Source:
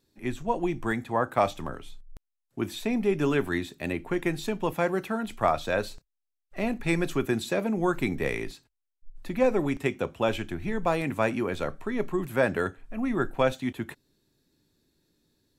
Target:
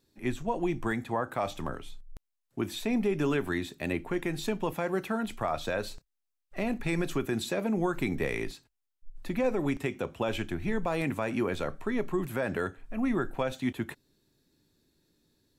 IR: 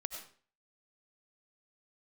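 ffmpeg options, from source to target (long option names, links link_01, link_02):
-af "alimiter=limit=-19dB:level=0:latency=1:release=105"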